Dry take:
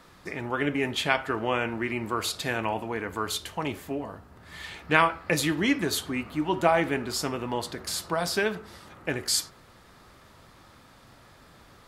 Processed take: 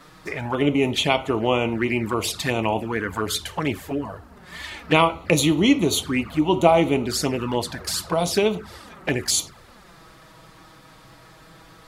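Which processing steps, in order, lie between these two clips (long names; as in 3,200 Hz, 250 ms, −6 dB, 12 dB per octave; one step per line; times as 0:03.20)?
flanger swept by the level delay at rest 7.5 ms, full sweep at −25 dBFS
level +8.5 dB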